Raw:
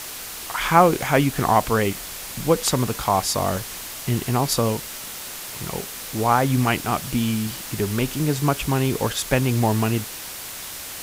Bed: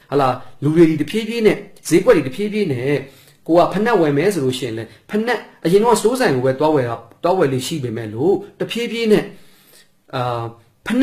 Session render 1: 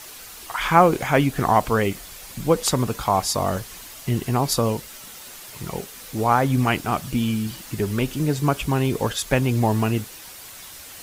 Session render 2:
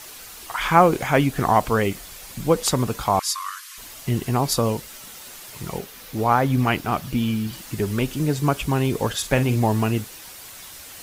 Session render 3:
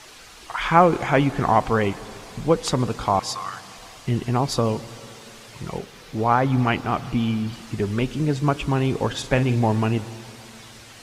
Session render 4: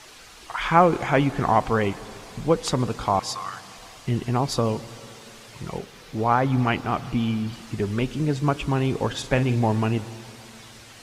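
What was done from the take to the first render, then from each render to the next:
broadband denoise 8 dB, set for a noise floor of −35 dBFS
0:03.19–0:03.78: linear-phase brick-wall band-pass 990–14,000 Hz; 0:05.78–0:07.53: parametric band 8,200 Hz −5.5 dB 0.9 octaves; 0:09.09–0:09.56: double-tracking delay 48 ms −10.5 dB
high-frequency loss of the air 72 metres; dense smooth reverb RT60 3.2 s, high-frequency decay 0.85×, pre-delay 105 ms, DRR 17 dB
level −1.5 dB

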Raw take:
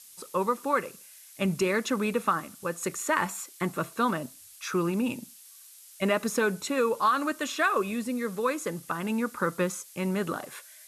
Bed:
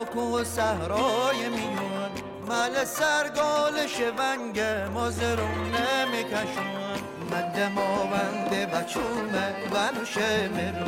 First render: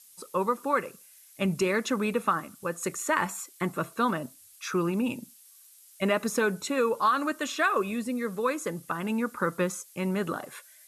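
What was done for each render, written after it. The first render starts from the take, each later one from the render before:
broadband denoise 6 dB, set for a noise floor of −51 dBFS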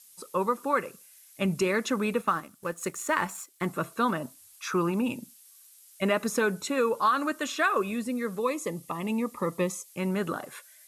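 0:02.21–0:03.66: mu-law and A-law mismatch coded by A
0:04.20–0:05.04: parametric band 950 Hz +5.5 dB
0:08.39–0:09.90: Butterworth band-reject 1,500 Hz, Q 2.6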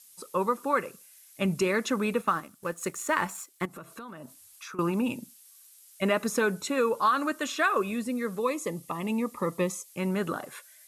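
0:03.65–0:04.79: downward compressor 10 to 1, threshold −39 dBFS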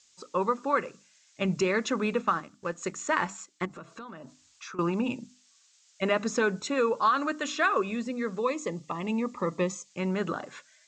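Butterworth low-pass 7,500 Hz 72 dB per octave
mains-hum notches 50/100/150/200/250/300 Hz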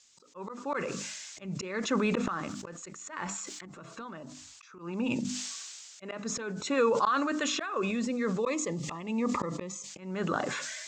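volume swells 334 ms
level that may fall only so fast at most 27 dB per second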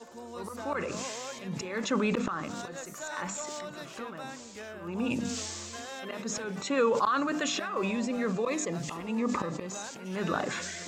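mix in bed −16.5 dB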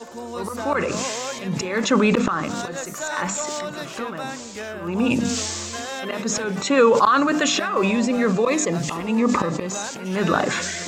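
level +10.5 dB

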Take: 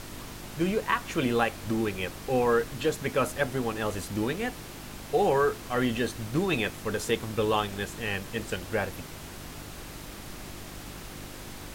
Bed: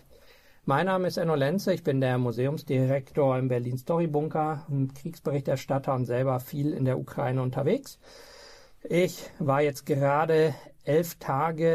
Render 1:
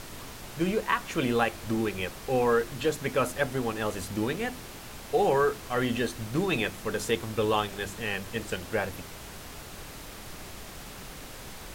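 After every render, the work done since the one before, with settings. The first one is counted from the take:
hum removal 50 Hz, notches 7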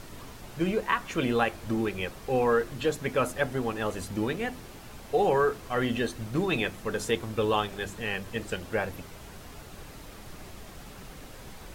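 broadband denoise 6 dB, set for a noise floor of −44 dBFS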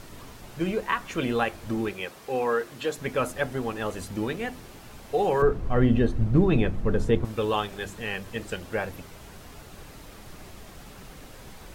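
0:01.93–0:02.98: high-pass filter 310 Hz 6 dB per octave
0:05.42–0:07.25: spectral tilt −4 dB per octave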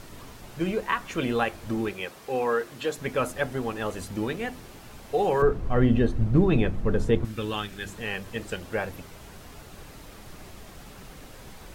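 0:07.23–0:07.87: flat-topped bell 670 Hz −8 dB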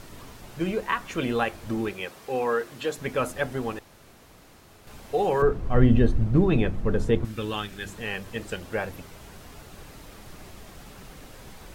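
0:03.79–0:04.87: fill with room tone
0:05.74–0:06.19: low-shelf EQ 130 Hz +7 dB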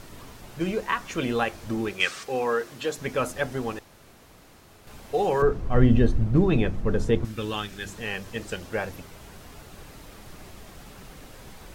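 0:02.00–0:02.23: gain on a spectral selection 1,100–9,400 Hz +12 dB
dynamic equaliser 5,800 Hz, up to +4 dB, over −53 dBFS, Q 1.5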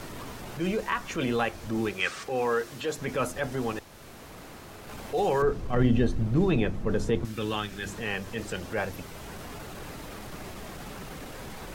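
transient designer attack −6 dB, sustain 0 dB
multiband upward and downward compressor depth 40%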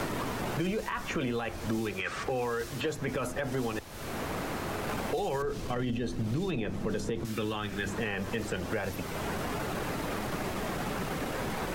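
brickwall limiter −22.5 dBFS, peak gain reduction 11.5 dB
multiband upward and downward compressor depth 100%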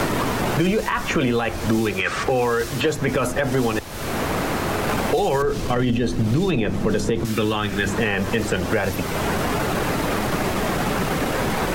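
level +11.5 dB

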